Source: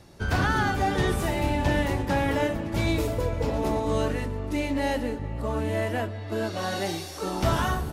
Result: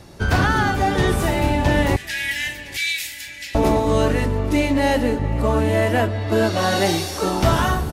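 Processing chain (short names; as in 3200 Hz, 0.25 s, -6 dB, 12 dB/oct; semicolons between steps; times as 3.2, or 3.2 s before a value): 1.96–3.55 steep high-pass 1700 Hz 72 dB/oct; vocal rider within 3 dB 0.5 s; feedback echo 0.808 s, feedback 27%, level -22.5 dB; gain +8.5 dB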